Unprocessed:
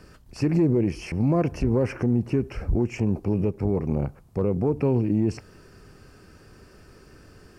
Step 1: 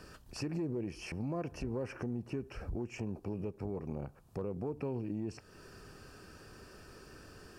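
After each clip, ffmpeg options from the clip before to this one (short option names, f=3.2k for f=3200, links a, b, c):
-af "lowshelf=f=360:g=-6,bandreject=f=2.1k:w=8.9,acompressor=threshold=-44dB:ratio=2"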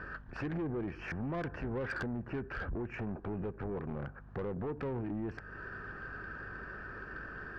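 -af "lowpass=f=1.6k:t=q:w=5.3,asoftclip=type=tanh:threshold=-36dB,aeval=exprs='val(0)+0.00141*(sin(2*PI*50*n/s)+sin(2*PI*2*50*n/s)/2+sin(2*PI*3*50*n/s)/3+sin(2*PI*4*50*n/s)/4+sin(2*PI*5*50*n/s)/5)':c=same,volume=4dB"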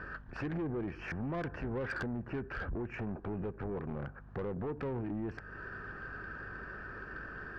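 -af anull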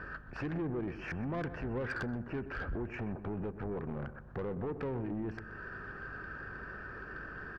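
-filter_complex "[0:a]asplit=2[a][b];[b]adelay=126,lowpass=f=1.6k:p=1,volume=-12dB,asplit=2[c][d];[d]adelay=126,lowpass=f=1.6k:p=1,volume=0.41,asplit=2[e][f];[f]adelay=126,lowpass=f=1.6k:p=1,volume=0.41,asplit=2[g][h];[h]adelay=126,lowpass=f=1.6k:p=1,volume=0.41[i];[a][c][e][g][i]amix=inputs=5:normalize=0"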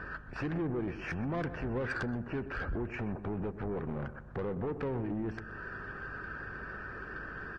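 -af "volume=2dB" -ar 22050 -c:a libvorbis -b:a 32k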